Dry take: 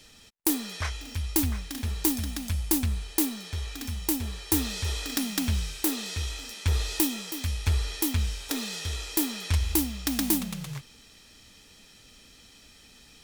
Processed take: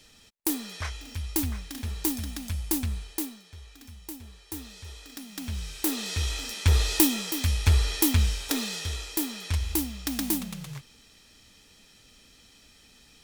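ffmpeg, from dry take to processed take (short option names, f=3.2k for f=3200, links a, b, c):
-af "volume=15dB,afade=t=out:st=2.96:d=0.47:silence=0.298538,afade=t=in:st=5.27:d=0.29:silence=0.446684,afade=t=in:st=5.56:d=0.82:silence=0.298538,afade=t=out:st=8.23:d=0.92:silence=0.446684"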